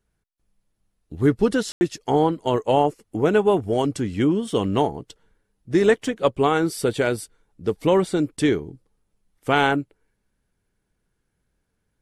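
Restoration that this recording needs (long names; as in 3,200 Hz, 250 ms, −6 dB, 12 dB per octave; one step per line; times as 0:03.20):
ambience match 0:01.72–0:01.81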